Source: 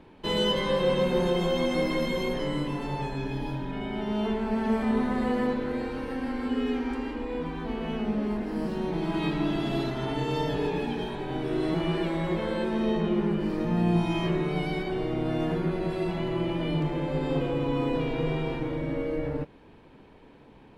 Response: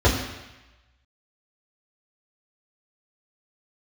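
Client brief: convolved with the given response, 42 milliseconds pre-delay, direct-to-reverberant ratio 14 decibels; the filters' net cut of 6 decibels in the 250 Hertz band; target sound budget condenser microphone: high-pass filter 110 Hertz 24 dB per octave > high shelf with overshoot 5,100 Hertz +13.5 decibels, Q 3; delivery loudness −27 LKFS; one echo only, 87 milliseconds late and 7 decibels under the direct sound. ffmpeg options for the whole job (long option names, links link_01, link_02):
-filter_complex "[0:a]equalizer=frequency=250:width_type=o:gain=-8.5,aecho=1:1:87:0.447,asplit=2[link_01][link_02];[1:a]atrim=start_sample=2205,adelay=42[link_03];[link_02][link_03]afir=irnorm=-1:irlink=0,volume=-33.5dB[link_04];[link_01][link_04]amix=inputs=2:normalize=0,highpass=frequency=110:width=0.5412,highpass=frequency=110:width=1.3066,highshelf=frequency=5100:width_type=q:width=3:gain=13.5,volume=4dB"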